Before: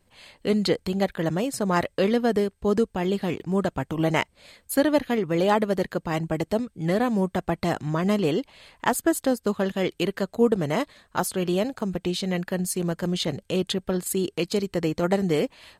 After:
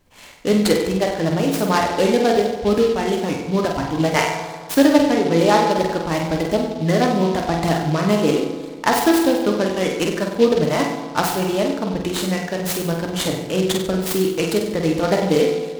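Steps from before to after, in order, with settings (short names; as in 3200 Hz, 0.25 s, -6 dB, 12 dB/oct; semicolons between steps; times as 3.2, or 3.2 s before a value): reverb removal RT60 1.6 s; on a send: flutter echo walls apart 8.2 m, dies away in 0.57 s; on the sum: FDN reverb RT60 1.7 s, low-frequency decay 1.05×, high-frequency decay 0.4×, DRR 4 dB; noise-modulated delay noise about 3300 Hz, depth 0.037 ms; gain +4.5 dB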